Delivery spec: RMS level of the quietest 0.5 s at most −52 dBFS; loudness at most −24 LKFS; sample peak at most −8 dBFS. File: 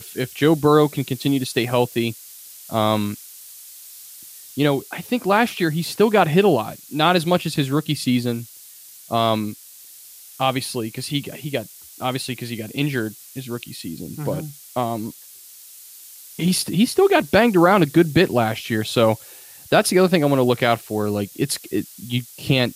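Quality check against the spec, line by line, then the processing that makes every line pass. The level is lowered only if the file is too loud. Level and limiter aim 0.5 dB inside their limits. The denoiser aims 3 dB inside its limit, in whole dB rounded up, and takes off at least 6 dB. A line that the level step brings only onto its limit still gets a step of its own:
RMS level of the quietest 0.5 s −44 dBFS: out of spec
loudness −20.5 LKFS: out of spec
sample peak −4.5 dBFS: out of spec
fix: broadband denoise 7 dB, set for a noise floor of −44 dBFS
level −4 dB

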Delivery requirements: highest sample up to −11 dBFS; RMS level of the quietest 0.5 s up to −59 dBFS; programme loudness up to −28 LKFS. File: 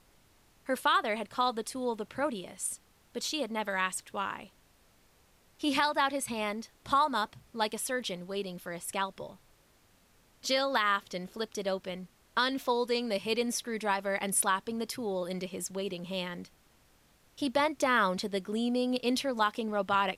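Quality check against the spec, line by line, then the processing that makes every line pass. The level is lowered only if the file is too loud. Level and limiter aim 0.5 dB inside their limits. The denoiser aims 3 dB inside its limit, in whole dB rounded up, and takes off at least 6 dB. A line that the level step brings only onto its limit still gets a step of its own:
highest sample −15.5 dBFS: in spec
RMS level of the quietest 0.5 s −65 dBFS: in spec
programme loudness −31.5 LKFS: in spec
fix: no processing needed

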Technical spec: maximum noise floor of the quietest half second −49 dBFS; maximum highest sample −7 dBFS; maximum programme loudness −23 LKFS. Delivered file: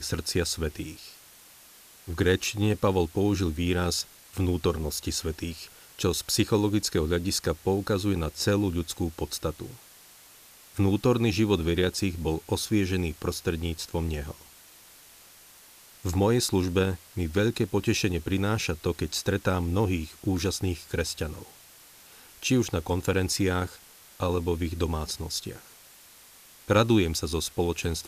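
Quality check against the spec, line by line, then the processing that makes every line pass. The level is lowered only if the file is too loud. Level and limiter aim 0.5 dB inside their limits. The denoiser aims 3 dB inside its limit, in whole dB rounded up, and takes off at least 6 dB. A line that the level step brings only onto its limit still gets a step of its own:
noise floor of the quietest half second −53 dBFS: in spec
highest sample −10.0 dBFS: in spec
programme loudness −27.5 LKFS: in spec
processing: no processing needed

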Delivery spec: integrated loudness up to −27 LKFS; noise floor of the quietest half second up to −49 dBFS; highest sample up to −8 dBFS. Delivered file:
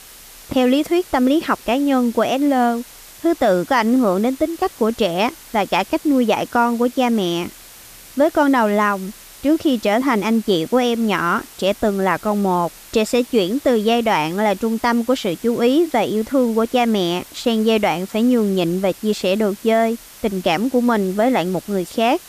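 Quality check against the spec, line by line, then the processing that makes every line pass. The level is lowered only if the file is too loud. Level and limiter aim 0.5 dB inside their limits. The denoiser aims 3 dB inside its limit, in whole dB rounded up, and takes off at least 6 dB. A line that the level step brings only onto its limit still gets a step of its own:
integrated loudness −18.5 LKFS: out of spec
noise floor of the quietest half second −41 dBFS: out of spec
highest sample −5.0 dBFS: out of spec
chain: level −9 dB

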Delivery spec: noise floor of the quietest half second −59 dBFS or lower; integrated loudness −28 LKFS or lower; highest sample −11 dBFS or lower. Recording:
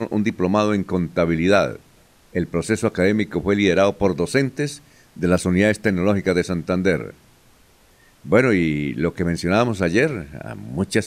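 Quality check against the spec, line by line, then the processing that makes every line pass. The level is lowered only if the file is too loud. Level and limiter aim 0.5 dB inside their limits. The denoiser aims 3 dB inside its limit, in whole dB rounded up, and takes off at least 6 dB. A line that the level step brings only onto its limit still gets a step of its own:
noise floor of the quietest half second −54 dBFS: out of spec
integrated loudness −20.0 LKFS: out of spec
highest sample −4.5 dBFS: out of spec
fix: level −8.5 dB

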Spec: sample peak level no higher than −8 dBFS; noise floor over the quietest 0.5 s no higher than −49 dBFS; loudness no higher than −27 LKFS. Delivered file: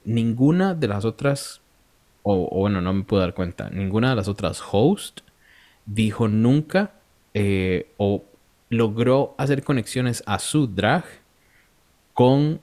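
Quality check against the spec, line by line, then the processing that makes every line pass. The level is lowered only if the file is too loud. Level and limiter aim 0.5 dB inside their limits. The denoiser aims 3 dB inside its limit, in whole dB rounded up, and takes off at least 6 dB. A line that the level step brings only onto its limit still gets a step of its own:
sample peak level −4.5 dBFS: out of spec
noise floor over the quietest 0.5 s −60 dBFS: in spec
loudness −22.0 LKFS: out of spec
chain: level −5.5 dB

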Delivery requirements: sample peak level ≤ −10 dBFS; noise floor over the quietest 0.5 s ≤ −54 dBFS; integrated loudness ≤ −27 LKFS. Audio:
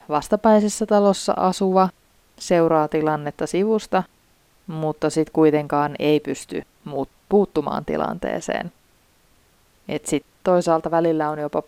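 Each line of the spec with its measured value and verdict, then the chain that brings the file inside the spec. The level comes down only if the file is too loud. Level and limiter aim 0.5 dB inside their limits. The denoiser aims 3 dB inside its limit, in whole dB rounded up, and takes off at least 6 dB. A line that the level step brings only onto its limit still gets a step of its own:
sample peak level −4.5 dBFS: out of spec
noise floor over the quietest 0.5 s −58 dBFS: in spec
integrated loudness −21.0 LKFS: out of spec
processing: level −6.5 dB

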